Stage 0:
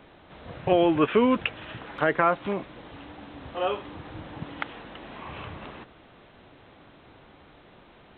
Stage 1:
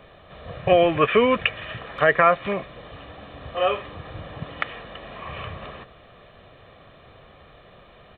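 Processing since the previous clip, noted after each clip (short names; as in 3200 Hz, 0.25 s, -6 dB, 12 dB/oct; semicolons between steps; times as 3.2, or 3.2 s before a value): comb 1.7 ms, depth 58%; dynamic EQ 2100 Hz, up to +6 dB, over -44 dBFS, Q 1.6; gain +2.5 dB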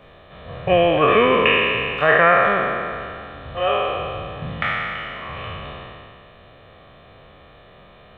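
spectral trails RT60 2.34 s; gain -1 dB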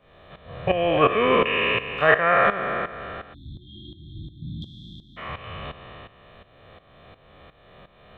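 spectral delete 3.34–5.17, 360–3200 Hz; tremolo saw up 2.8 Hz, depth 80%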